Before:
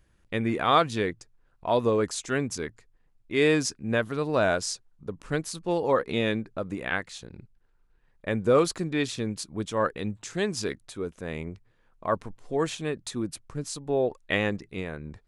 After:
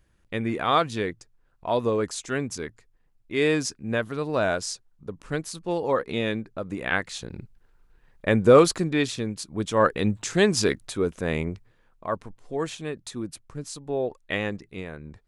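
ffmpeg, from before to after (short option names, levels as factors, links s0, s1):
-af "volume=5.96,afade=t=in:st=6.64:d=0.65:silence=0.421697,afade=t=out:st=8.44:d=0.93:silence=0.421697,afade=t=in:st=9.37:d=0.7:silence=0.375837,afade=t=out:st=11.33:d=0.74:silence=0.316228"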